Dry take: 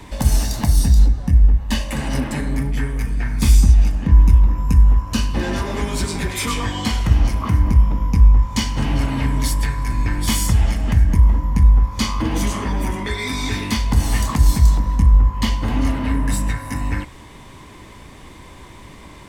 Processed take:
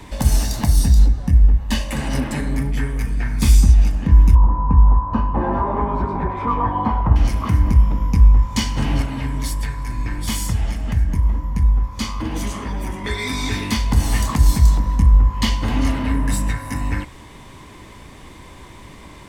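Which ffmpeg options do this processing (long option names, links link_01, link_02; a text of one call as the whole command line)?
ffmpeg -i in.wav -filter_complex "[0:a]asettb=1/sr,asplit=3[link_01][link_02][link_03];[link_01]atrim=end=4.354[link_04];[link_02]atrim=start=4.35:end=7.16,asetpts=PTS-STARTPTS,afade=type=in:duration=0.004:curve=qsin,afade=type=out:start_time=2.806:duration=0.004:curve=qsin,lowpass=frequency=970:width_type=q:width=3.6[link_05];[link_03]atrim=start=7.156[link_06];[link_04][link_05]acrossfade=duration=0.004:curve1=hsin:curve2=qsin[link_07];[link_07][link_06]acrossfade=duration=0.004:curve1=qsin:curve2=hsin,asettb=1/sr,asplit=3[link_08][link_09][link_10];[link_08]atrim=end=9.024[link_11];[link_09]atrim=start=9.02:end=13.04,asetpts=PTS-STARTPTS,afade=type=in:duration=0.004:curve=qsin,afade=type=out:start_time=4.016:duration=0.004:curve=qsin,flanger=delay=1.4:depth=6.4:regen=-76:speed=1.6:shape=sinusoidal[link_12];[link_10]atrim=start=13.036[link_13];[link_11][link_12]acrossfade=duration=0.004:curve1=hsin:curve2=qsin[link_14];[link_14][link_13]acrossfade=duration=0.004:curve1=qsin:curve2=hsin,asettb=1/sr,asplit=3[link_15][link_16][link_17];[link_15]atrim=end=15.304[link_18];[link_16]atrim=start=15.3:end=16.03,asetpts=PTS-STARTPTS,afade=type=in:duration=0.004:curve=qsin,afade=type=out:start_time=0.726:duration=0.004:curve=qsin,equalizer=frequency=4500:width=0.47:gain=3.5[link_19];[link_17]atrim=start=16.026[link_20];[link_18][link_19]acrossfade=duration=0.004:curve1=hsin:curve2=qsin[link_21];[link_21][link_20]acrossfade=duration=0.004:curve1=qsin:curve2=hsin" out.wav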